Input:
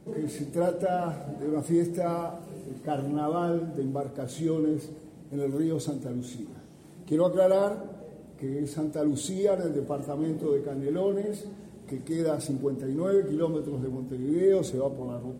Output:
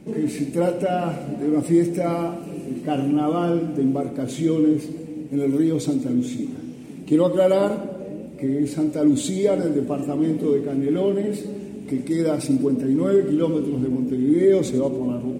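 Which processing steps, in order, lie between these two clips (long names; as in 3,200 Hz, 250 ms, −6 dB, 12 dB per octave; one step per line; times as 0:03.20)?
graphic EQ with 15 bands 250 Hz +10 dB, 2,500 Hz +10 dB, 6,300 Hz +3 dB
echo with a time of its own for lows and highs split 510 Hz, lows 494 ms, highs 95 ms, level −15 dB
level +3.5 dB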